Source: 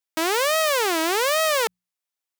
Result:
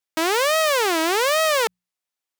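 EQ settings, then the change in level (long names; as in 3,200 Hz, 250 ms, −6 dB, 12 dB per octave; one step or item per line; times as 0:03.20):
high-shelf EQ 8,400 Hz −4 dB
+2.0 dB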